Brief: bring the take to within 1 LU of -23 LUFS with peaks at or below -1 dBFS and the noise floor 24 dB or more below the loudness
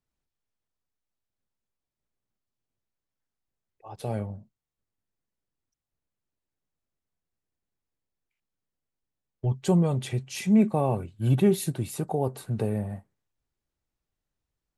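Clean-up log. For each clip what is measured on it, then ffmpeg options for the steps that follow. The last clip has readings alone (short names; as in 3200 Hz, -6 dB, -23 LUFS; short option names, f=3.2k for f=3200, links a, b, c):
loudness -26.5 LUFS; peak -11.5 dBFS; loudness target -23.0 LUFS
-> -af "volume=3.5dB"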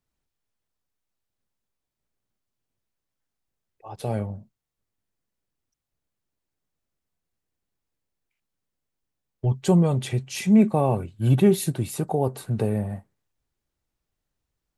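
loudness -23.0 LUFS; peak -8.0 dBFS; noise floor -84 dBFS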